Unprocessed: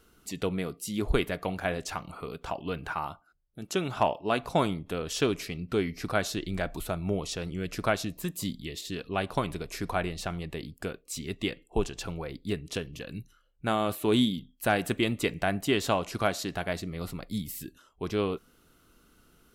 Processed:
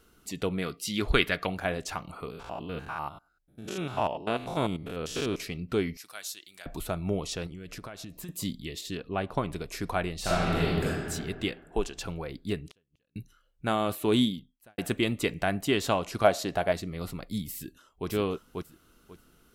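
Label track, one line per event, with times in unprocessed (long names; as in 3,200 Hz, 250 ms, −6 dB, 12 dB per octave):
0.620000	1.470000	flat-topped bell 2,600 Hz +8.5 dB 2.4 octaves
2.300000	5.400000	spectrum averaged block by block every 100 ms
5.970000	6.660000	first difference
7.460000	8.290000	downward compressor 16 to 1, threshold −37 dBFS
8.970000	9.530000	high-shelf EQ 2,700 Hz −10.5 dB
10.200000	10.840000	thrown reverb, RT60 2.1 s, DRR −10.5 dB
11.520000	11.970000	parametric band 110 Hz −13.5 dB 1.1 octaves
12.710000	13.160000	gate with flip shuts at −34 dBFS, range −39 dB
14.260000	14.780000	fade out quadratic
16.240000	16.720000	parametric band 620 Hz +8.5 dB 1 octave
17.560000	18.080000	delay throw 540 ms, feedback 20%, level −2 dB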